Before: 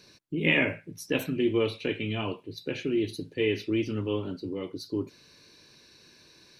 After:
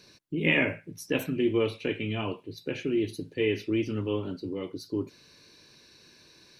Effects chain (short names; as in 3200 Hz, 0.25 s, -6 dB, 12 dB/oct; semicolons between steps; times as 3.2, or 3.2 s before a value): dynamic EQ 4000 Hz, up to -5 dB, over -51 dBFS, Q 2.4